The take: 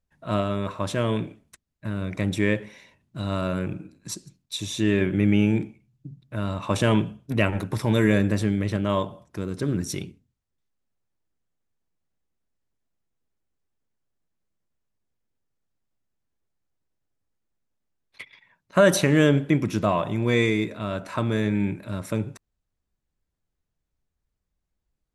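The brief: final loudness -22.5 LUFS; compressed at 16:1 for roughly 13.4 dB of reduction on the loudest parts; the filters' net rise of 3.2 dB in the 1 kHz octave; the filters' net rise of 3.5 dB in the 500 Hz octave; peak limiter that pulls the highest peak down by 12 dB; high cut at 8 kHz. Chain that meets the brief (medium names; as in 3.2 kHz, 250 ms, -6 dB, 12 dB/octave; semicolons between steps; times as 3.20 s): low-pass 8 kHz; peaking EQ 500 Hz +3.5 dB; peaking EQ 1 kHz +3 dB; compression 16:1, threshold -22 dBFS; trim +11 dB; peak limiter -10.5 dBFS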